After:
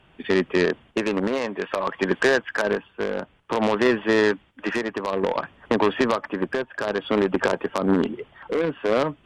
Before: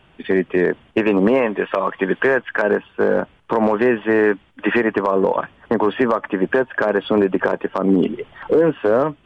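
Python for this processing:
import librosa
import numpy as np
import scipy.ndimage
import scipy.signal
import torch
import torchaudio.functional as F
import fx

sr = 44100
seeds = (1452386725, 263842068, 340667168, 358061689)

y = fx.cheby_harmonics(x, sr, harmonics=(3, 5), levels_db=(-10, -17), full_scale_db=-6.0)
y = fx.tremolo_shape(y, sr, shape='triangle', hz=0.56, depth_pct=60)
y = y * librosa.db_to_amplitude(1.5)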